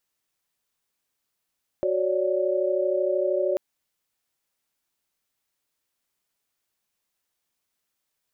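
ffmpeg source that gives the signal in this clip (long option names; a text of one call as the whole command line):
ffmpeg -f lavfi -i "aevalsrc='0.0531*(sin(2*PI*369.99*t)+sin(2*PI*554.37*t)+sin(2*PI*587.33*t))':duration=1.74:sample_rate=44100" out.wav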